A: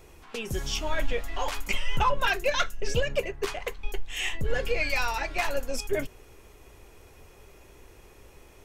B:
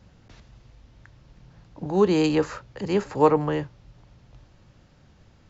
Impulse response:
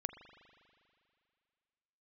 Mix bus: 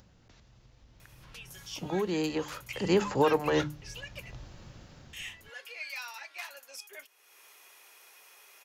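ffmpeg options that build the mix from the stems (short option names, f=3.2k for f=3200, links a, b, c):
-filter_complex "[0:a]highpass=1.1k,equalizer=f=7.6k:w=3.4:g=-6,adelay=1000,volume=-11.5dB,asplit=3[a][b][c];[a]atrim=end=4.39,asetpts=PTS-STARTPTS,afade=t=out:st=4.386:d=0.004:c=hsin[d];[b]atrim=start=4.39:end=5.13,asetpts=PTS-STARTPTS,volume=0[e];[c]atrim=start=5.13,asetpts=PTS-STARTPTS,afade=t=in:d=0.004:c=hsin[f];[d][e][f]concat=n=3:v=0:a=1[g];[1:a]bandreject=f=50:t=h:w=6,bandreject=f=100:t=h:w=6,bandreject=f=150:t=h:w=6,bandreject=f=200:t=h:w=6,bandreject=f=250:t=h:w=6,bandreject=f=300:t=h:w=6,dynaudnorm=f=160:g=11:m=11dB,alimiter=limit=-11dB:level=0:latency=1:release=329,volume=-3.5dB,afade=t=in:st=1.02:d=0.41:silence=0.266073,afade=t=in:st=2.45:d=0.54:silence=0.398107[h];[g][h]amix=inputs=2:normalize=0,acompressor=mode=upward:threshold=-46dB:ratio=2.5,highshelf=f=4.5k:g=6"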